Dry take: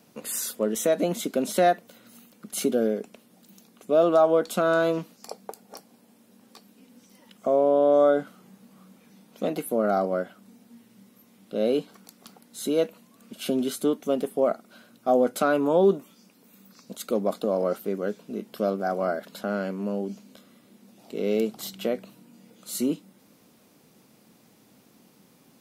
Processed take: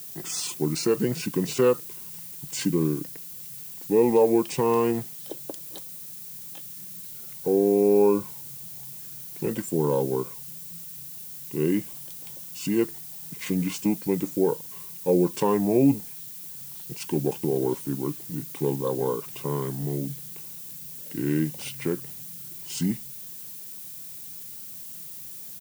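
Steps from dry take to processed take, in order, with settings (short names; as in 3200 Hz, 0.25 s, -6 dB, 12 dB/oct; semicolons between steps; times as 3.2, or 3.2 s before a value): pitch shift -6 st; added noise violet -40 dBFS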